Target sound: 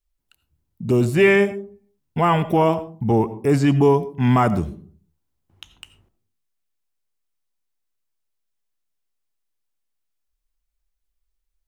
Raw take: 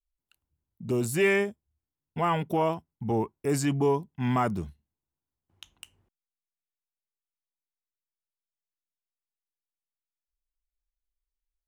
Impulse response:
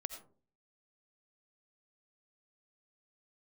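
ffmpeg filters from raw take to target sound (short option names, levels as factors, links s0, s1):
-filter_complex "[0:a]acrossover=split=4200[s0][s1];[s1]acompressor=threshold=0.00447:ratio=4:attack=1:release=60[s2];[s0][s2]amix=inputs=2:normalize=0,asplit=2[s3][s4];[1:a]atrim=start_sample=2205,lowshelf=f=380:g=6.5[s5];[s4][s5]afir=irnorm=-1:irlink=0,volume=0.944[s6];[s3][s6]amix=inputs=2:normalize=0,volume=1.41"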